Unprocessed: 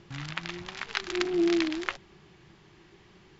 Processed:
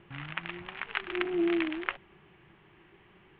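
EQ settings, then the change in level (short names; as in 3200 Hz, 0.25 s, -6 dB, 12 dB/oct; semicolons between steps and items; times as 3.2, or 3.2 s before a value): steep low-pass 3100 Hz 48 dB/oct; low shelf 430 Hz -5 dB; 0.0 dB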